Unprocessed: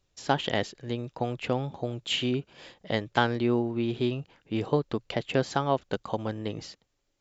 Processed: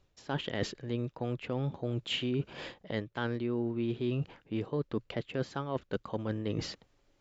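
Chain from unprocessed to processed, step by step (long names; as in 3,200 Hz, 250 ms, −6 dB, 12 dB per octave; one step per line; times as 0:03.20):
low-pass filter 2,500 Hz 6 dB per octave
reversed playback
downward compressor 6 to 1, threshold −39 dBFS, peak gain reduction 20 dB
reversed playback
dynamic equaliser 760 Hz, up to −7 dB, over −59 dBFS, Q 2.4
level +9 dB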